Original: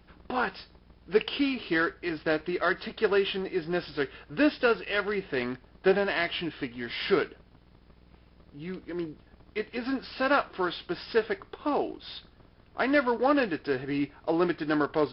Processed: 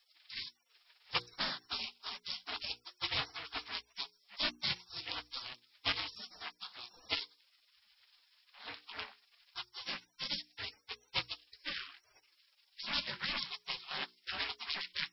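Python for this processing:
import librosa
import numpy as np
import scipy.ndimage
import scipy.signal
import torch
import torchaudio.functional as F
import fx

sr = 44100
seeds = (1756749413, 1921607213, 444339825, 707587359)

y = x * np.sin(2.0 * np.pi * 190.0 * np.arange(len(x)) / sr)
y = fx.spec_gate(y, sr, threshold_db=-30, keep='weak')
y = fx.hum_notches(y, sr, base_hz=60, count=8)
y = y * 10.0 ** (13.5 / 20.0)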